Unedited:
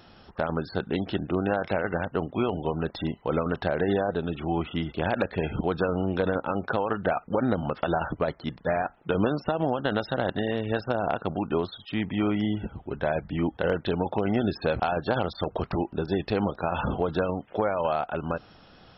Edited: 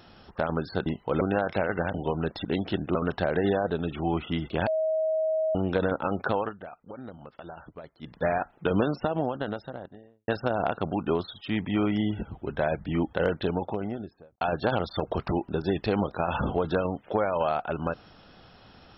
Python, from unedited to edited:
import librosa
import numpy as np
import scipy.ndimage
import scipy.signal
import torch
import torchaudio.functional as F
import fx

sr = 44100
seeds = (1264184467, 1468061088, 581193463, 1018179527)

y = fx.studio_fade_out(x, sr, start_s=9.24, length_s=1.48)
y = fx.studio_fade_out(y, sr, start_s=13.7, length_s=1.15)
y = fx.edit(y, sr, fx.swap(start_s=0.86, length_s=0.5, other_s=3.04, other_length_s=0.35),
    fx.cut(start_s=2.09, length_s=0.44),
    fx.bleep(start_s=5.11, length_s=0.88, hz=634.0, db=-23.0),
    fx.fade_down_up(start_s=6.85, length_s=1.74, db=-16.5, fade_s=0.2, curve='qua'), tone=tone)